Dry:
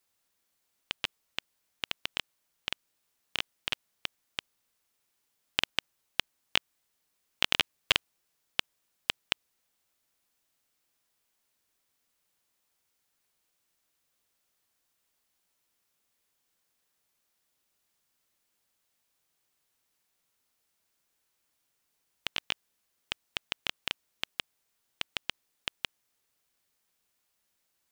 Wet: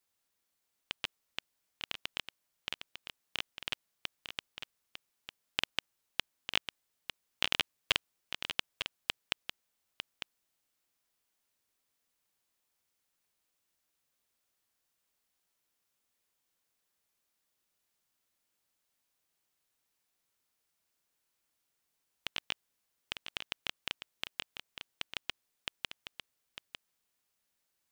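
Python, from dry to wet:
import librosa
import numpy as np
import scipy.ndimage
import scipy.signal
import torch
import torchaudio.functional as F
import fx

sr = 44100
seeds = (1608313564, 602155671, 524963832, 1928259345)

y = x + 10.0 ** (-8.5 / 20.0) * np.pad(x, (int(901 * sr / 1000.0), 0))[:len(x)]
y = y * 10.0 ** (-4.5 / 20.0)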